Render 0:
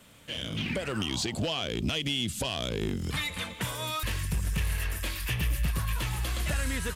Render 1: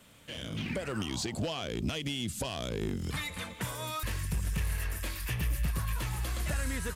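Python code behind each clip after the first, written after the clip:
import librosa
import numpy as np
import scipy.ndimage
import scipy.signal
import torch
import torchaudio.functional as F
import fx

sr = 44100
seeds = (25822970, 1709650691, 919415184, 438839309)

y = fx.dynamic_eq(x, sr, hz=3100.0, q=1.6, threshold_db=-46.0, ratio=4.0, max_db=-5)
y = y * 10.0 ** (-2.5 / 20.0)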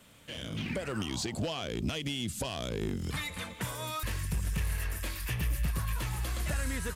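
y = x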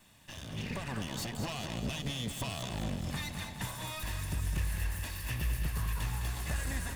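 y = fx.lower_of_two(x, sr, delay_ms=1.1)
y = fx.echo_feedback(y, sr, ms=208, feedback_pct=59, wet_db=-8)
y = y * 10.0 ** (-2.0 / 20.0)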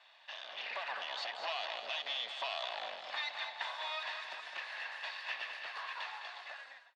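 y = fx.fade_out_tail(x, sr, length_s=1.04)
y = scipy.signal.sosfilt(scipy.signal.ellip(3, 1.0, 80, [660.0, 4200.0], 'bandpass', fs=sr, output='sos'), y)
y = y * 10.0 ** (3.5 / 20.0)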